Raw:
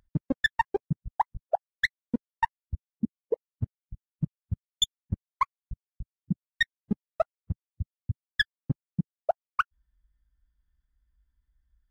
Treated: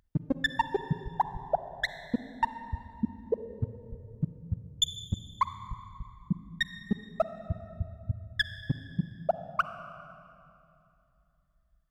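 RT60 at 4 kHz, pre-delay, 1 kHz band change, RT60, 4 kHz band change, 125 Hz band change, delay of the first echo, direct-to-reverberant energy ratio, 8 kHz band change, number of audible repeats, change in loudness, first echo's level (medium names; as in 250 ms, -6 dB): 2.0 s, 39 ms, -1.0 dB, 2.7 s, -1.5 dB, -0.5 dB, no echo, 10.5 dB, -1.0 dB, no echo, -1.5 dB, no echo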